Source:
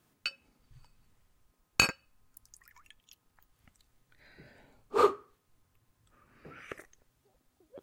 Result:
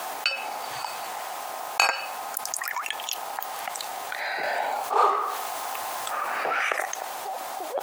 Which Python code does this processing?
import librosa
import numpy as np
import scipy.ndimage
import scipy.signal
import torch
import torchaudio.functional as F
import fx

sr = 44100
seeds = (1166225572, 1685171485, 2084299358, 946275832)

y = fx.law_mismatch(x, sr, coded='mu', at=(4.43, 6.69))
y = fx.dmg_noise_colour(y, sr, seeds[0], colour='brown', level_db=-68.0)
y = fx.highpass_res(y, sr, hz=760.0, q=4.9)
y = fx.env_flatten(y, sr, amount_pct=70)